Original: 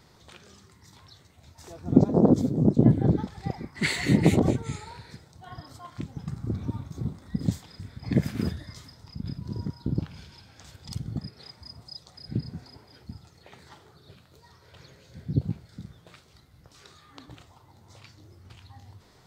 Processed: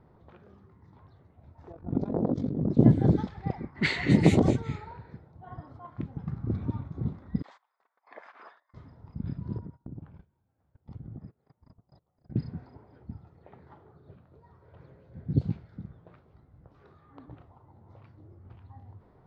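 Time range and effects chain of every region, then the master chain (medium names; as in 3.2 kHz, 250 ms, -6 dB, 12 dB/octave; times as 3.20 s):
1.72–2.70 s: AM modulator 47 Hz, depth 65% + compression 3:1, threshold -23 dBFS + low-pass 7.2 kHz
7.42–8.74 s: gate -38 dBFS, range -19 dB + high-pass 800 Hz 24 dB/octave + peaking EQ 1.1 kHz +5 dB 0.51 oct
9.58–12.36 s: gate -44 dBFS, range -22 dB + treble shelf 4.4 kHz -8.5 dB + compression, threshold -38 dBFS
whole clip: level-controlled noise filter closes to 920 Hz, open at -17 dBFS; low-pass 7.3 kHz 12 dB/octave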